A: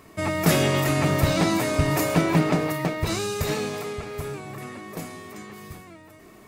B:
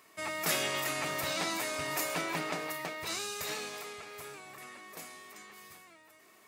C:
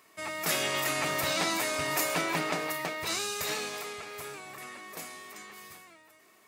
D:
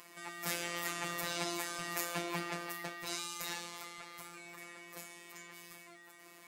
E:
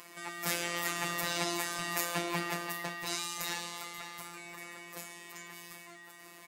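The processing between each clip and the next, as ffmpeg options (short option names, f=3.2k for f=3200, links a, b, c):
-af "highpass=f=1.4k:p=1,volume=-4.5dB"
-af "dynaudnorm=f=120:g=11:m=4.5dB"
-af "acompressor=mode=upward:threshold=-37dB:ratio=2.5,afftfilt=real='hypot(re,im)*cos(PI*b)':imag='0':win_size=1024:overlap=0.75,volume=-4.5dB"
-af "aecho=1:1:533:0.211,volume=4dB"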